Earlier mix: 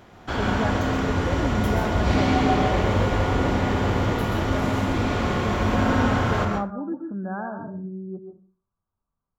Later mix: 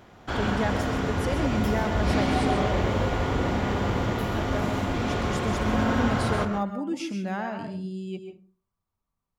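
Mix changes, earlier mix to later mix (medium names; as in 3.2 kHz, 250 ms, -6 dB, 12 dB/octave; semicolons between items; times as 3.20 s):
speech: remove brick-wall FIR low-pass 1.7 kHz; background: send -8.0 dB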